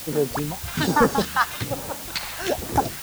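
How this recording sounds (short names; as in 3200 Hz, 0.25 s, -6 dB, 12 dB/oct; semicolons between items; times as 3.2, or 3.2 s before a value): phasing stages 2, 1.2 Hz, lowest notch 270–3300 Hz; a quantiser's noise floor 6-bit, dither triangular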